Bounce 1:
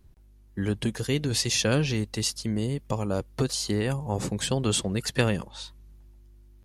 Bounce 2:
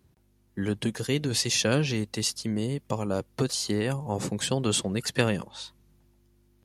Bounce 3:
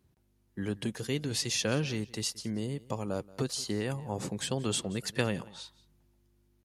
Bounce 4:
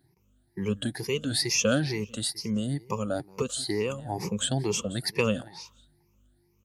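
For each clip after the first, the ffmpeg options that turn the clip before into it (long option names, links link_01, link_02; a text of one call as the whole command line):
ffmpeg -i in.wav -af "highpass=110" out.wav
ffmpeg -i in.wav -af "aecho=1:1:178:0.0891,volume=-5.5dB" out.wav
ffmpeg -i in.wav -af "afftfilt=real='re*pow(10,19/40*sin(2*PI*(0.8*log(max(b,1)*sr/1024/100)/log(2)-(2.2)*(pts-256)/sr)))':imag='im*pow(10,19/40*sin(2*PI*(0.8*log(max(b,1)*sr/1024/100)/log(2)-(2.2)*(pts-256)/sr)))':win_size=1024:overlap=0.75" out.wav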